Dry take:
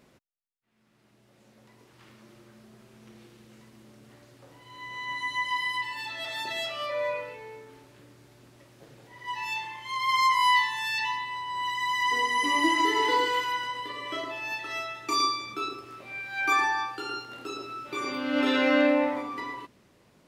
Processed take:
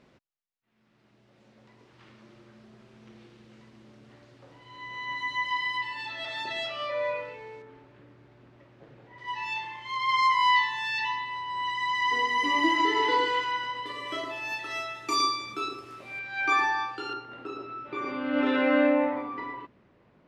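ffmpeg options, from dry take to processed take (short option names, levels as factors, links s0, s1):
-af "asetnsamples=n=441:p=0,asendcmd='7.62 lowpass f 2400;9.18 lowpass f 4500;13.86 lowpass f 12000;16.19 lowpass f 4900;17.13 lowpass f 2200',lowpass=4700"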